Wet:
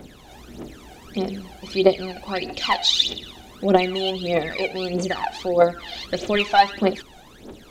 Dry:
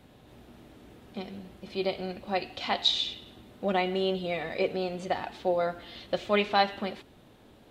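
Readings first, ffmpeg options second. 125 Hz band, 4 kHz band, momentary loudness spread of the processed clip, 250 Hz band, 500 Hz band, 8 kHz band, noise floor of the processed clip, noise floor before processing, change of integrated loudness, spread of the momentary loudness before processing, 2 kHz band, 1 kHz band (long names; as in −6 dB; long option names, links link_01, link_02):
+8.0 dB, +8.0 dB, 17 LU, +8.5 dB, +8.0 dB, +14.5 dB, −47 dBFS, −56 dBFS, +8.0 dB, 16 LU, +7.5 dB, +8.5 dB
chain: -filter_complex "[0:a]lowshelf=frequency=330:gain=-3.5,asplit=2[link_01][link_02];[link_02]acompressor=threshold=-39dB:ratio=6,volume=-1dB[link_03];[link_01][link_03]amix=inputs=2:normalize=0,apsyclip=16.5dB,aphaser=in_gain=1:out_gain=1:delay=1.4:decay=0.74:speed=1.6:type=triangular,equalizer=frequency=100:width_type=o:width=0.67:gain=-8,equalizer=frequency=400:width_type=o:width=0.67:gain=4,equalizer=frequency=6300:width_type=o:width=0.67:gain=7,volume=-13.5dB"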